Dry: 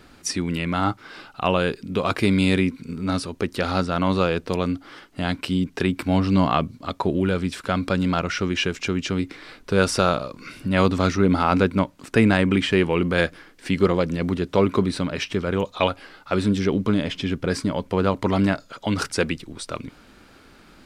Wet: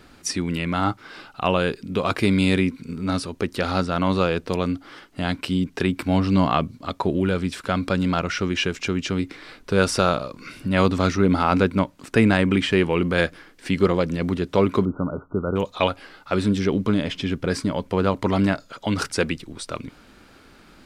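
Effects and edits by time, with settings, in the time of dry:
0:14.85–0:15.56: linear-phase brick-wall low-pass 1,500 Hz

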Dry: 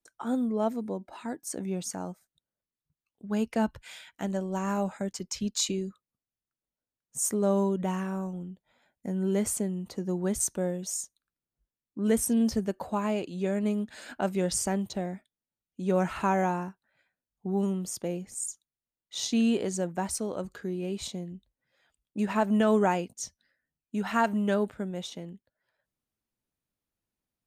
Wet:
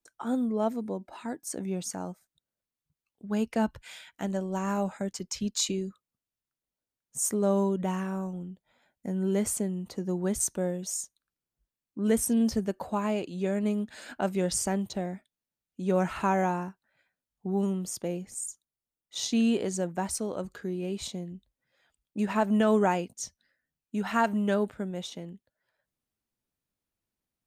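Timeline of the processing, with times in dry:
0:18.40–0:19.16: parametric band 3,200 Hz −6 dB 2.2 octaves

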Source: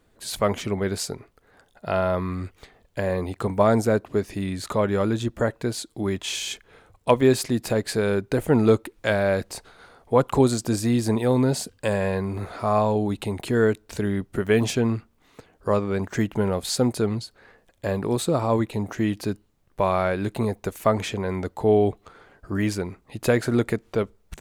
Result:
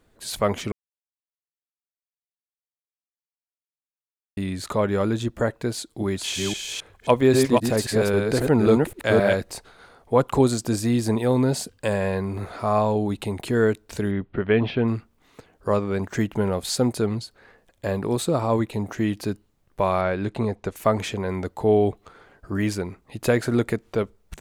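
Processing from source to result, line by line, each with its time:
0:00.72–0:04.37: silence
0:05.74–0:09.50: delay that plays each chunk backwards 266 ms, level −2.5 dB
0:14.11–0:14.88: inverse Chebyshev low-pass filter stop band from 6,600 Hz
0:20.01–0:20.76: high-frequency loss of the air 73 metres

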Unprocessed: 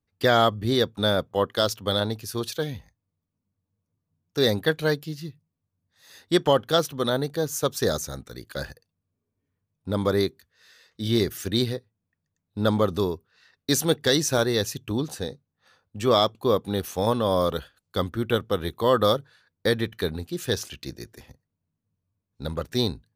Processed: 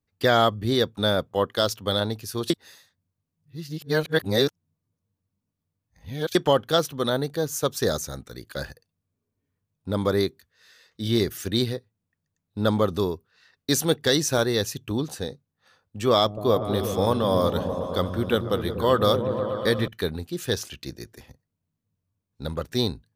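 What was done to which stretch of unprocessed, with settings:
0:02.50–0:06.35: reverse
0:16.13–0:19.88: echo whose low-pass opens from repeat to repeat 121 ms, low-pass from 200 Hz, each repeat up 1 octave, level −3 dB

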